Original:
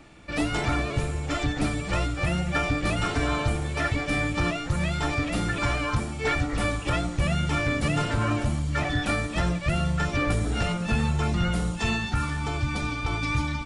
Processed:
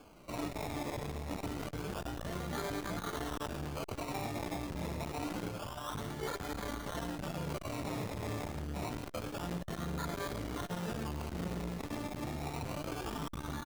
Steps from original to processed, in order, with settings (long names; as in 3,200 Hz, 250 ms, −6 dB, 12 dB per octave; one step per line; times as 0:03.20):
low-shelf EQ 160 Hz −8 dB
brickwall limiter −23.5 dBFS, peak gain reduction 9.5 dB
0:05.48–0:05.90: phaser with its sweep stopped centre 880 Hz, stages 4
sample-and-hold swept by an LFO 23×, swing 60% 0.27 Hz
flanger 0.3 Hz, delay 4 ms, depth 8.1 ms, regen −56%
on a send: single-tap delay 109 ms −11 dB
on the sum: saturating transformer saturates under 350 Hz